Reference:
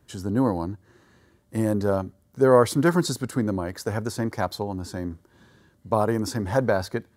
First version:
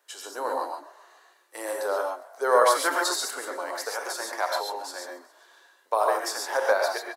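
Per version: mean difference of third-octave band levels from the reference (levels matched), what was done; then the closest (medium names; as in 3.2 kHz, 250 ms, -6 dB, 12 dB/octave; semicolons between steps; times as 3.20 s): 14.5 dB: Bessel high-pass 770 Hz, order 8; frequency-shifting echo 136 ms, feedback 61%, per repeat +39 Hz, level -20 dB; gated-style reverb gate 160 ms rising, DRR 0.5 dB; trim +2 dB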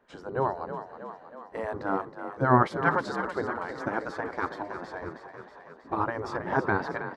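9.5 dB: low-pass 1.9 kHz 12 dB/octave; spectral gate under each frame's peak -10 dB weak; frequency-shifting echo 319 ms, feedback 63%, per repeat +36 Hz, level -10 dB; trim +3.5 dB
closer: second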